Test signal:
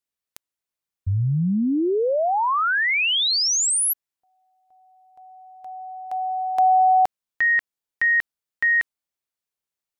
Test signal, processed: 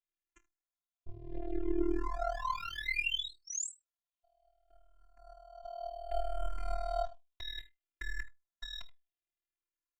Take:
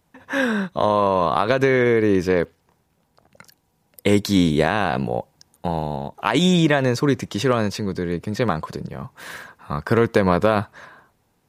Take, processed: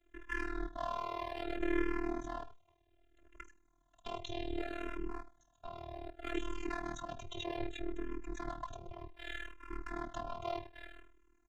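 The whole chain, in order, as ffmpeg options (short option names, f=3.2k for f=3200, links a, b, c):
-filter_complex "[0:a]asuperstop=centerf=4900:order=8:qfactor=2.3,equalizer=f=170:w=2.2:g=7.5,aecho=1:1:79:0.0668,aresample=16000,asoftclip=type=tanh:threshold=-16.5dB,aresample=44100,alimiter=limit=-23.5dB:level=0:latency=1:release=152,flanger=delay=7.1:depth=9.7:regen=68:speed=0.25:shape=triangular,highshelf=f=5.2k:g=-10.5,acrossover=split=120|2300[a][b][c];[b]aeval=exprs='max(val(0),0)':c=same[d];[a][d][c]amix=inputs=3:normalize=0,afftfilt=real='hypot(re,im)*cos(PI*b)':imag='0':win_size=512:overlap=0.75,tremolo=f=39:d=0.889,asplit=2[e][f];[f]afreqshift=-0.64[g];[e][g]amix=inputs=2:normalize=1,volume=9.5dB"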